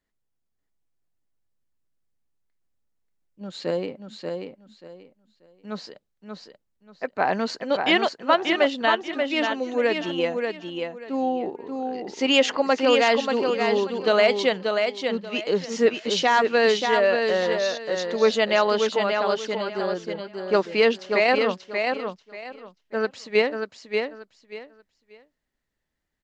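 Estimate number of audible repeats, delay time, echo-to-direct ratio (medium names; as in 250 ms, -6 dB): 3, 585 ms, -5.0 dB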